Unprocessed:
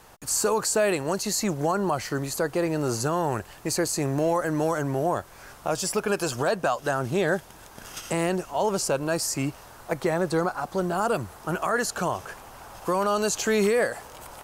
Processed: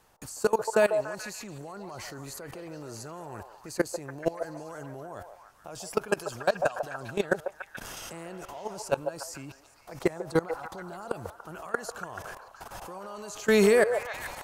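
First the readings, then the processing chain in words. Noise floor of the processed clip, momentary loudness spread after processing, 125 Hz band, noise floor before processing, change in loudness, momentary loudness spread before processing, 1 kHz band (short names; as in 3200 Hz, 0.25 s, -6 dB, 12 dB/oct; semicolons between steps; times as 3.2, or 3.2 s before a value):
-57 dBFS, 19 LU, -10.0 dB, -48 dBFS, -4.5 dB, 11 LU, -7.5 dB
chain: level quantiser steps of 22 dB; delay with a stepping band-pass 0.144 s, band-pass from 690 Hz, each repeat 0.7 oct, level -4 dB; gain +2.5 dB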